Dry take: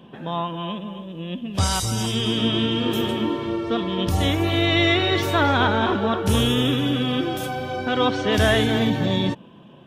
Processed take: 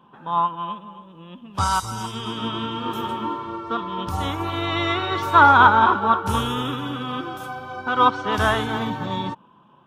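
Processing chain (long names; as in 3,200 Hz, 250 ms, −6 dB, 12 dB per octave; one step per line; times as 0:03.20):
flat-topped bell 1,100 Hz +13.5 dB 1 octave
expander for the loud parts 1.5 to 1, over −27 dBFS
level −1.5 dB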